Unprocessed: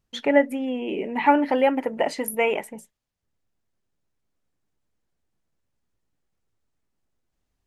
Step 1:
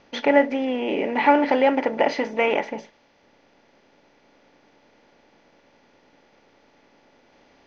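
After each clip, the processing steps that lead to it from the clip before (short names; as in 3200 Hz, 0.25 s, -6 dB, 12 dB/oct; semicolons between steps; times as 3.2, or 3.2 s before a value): per-bin compression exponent 0.6; Chebyshev low-pass 6100 Hz, order 6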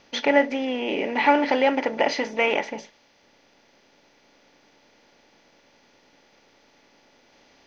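high shelf 3100 Hz +11.5 dB; gain -2.5 dB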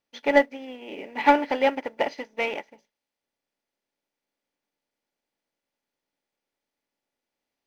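requantised 10-bit, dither none; sample leveller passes 1; upward expander 2.5:1, over -30 dBFS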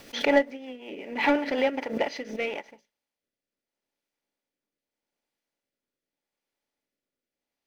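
rotary speaker horn 5.5 Hz, later 0.8 Hz, at 1.52; backwards sustainer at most 99 dB/s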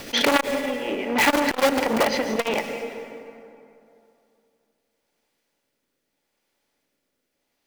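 in parallel at -4.5 dB: wrapped overs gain 22.5 dB; on the sum: plate-style reverb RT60 2.7 s, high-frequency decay 0.55×, pre-delay 0.105 s, DRR 9 dB; core saturation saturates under 2000 Hz; gain +8 dB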